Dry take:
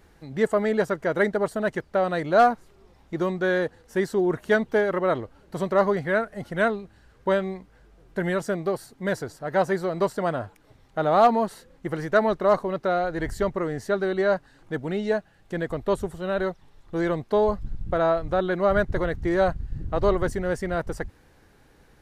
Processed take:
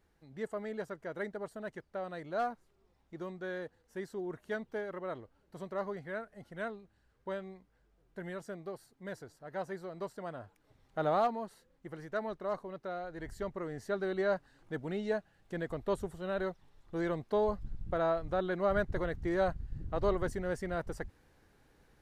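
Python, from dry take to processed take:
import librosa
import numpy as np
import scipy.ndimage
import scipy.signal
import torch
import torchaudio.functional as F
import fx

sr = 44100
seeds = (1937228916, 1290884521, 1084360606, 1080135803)

y = fx.gain(x, sr, db=fx.line((10.32, -16.5), (11.08, -7.5), (11.33, -16.0), (13.04, -16.0), (14.12, -9.0)))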